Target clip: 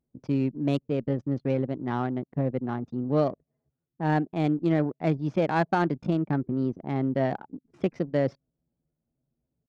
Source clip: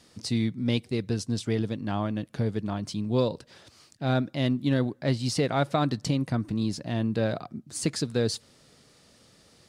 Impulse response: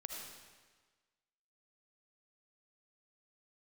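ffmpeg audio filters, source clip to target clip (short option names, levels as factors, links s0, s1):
-af "highpass=f=89:p=1,anlmdn=6.31,lowpass=2500,adynamicsmooth=sensitivity=2:basefreq=1600,asetrate=52444,aresample=44100,atempo=0.840896,volume=1.19"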